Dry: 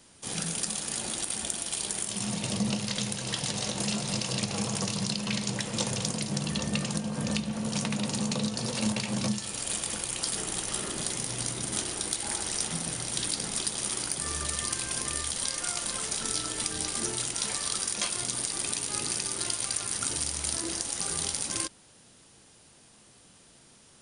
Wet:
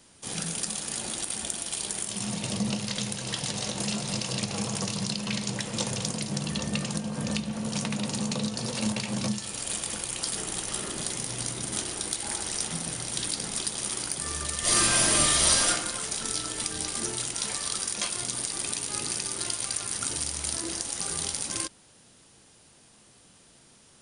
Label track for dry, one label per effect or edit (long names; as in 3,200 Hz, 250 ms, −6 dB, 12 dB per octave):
14.600000	15.670000	thrown reverb, RT60 0.88 s, DRR −11.5 dB